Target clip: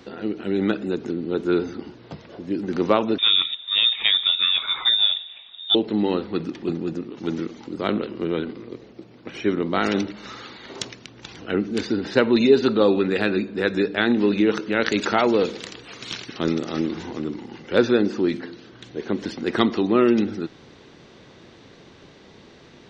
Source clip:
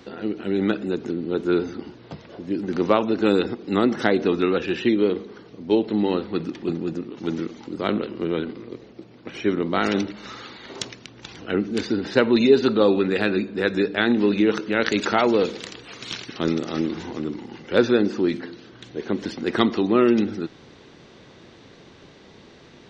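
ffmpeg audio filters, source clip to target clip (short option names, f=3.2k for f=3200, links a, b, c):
-filter_complex "[0:a]asettb=1/sr,asplit=3[a][b][c];[a]atrim=end=3.184[d];[b]atrim=start=3.18:end=5.75,asetpts=PTS-STARTPTS,afade=t=in:d=0.004:c=qsin,afade=t=out:st=2.566:d=0.004:c=qsin,lowpass=f=3.3k:t=q:w=0.5098,lowpass=f=3.3k:t=q:w=0.6013,lowpass=f=3.3k:t=q:w=0.9,lowpass=f=3.3k:t=q:w=2.563,afreqshift=-3900[e];[c]atrim=start=5.746[f];[d][e]acrossfade=d=0.004:c1=hsin:c2=qsin[g];[g][f]acrossfade=d=0.004:c1=qsin:c2=hsin"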